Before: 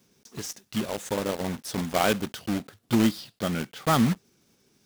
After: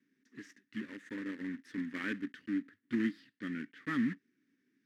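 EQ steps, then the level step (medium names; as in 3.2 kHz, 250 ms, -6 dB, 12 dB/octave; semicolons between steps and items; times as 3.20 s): two resonant band-passes 710 Hz, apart 2.7 oct; 0.0 dB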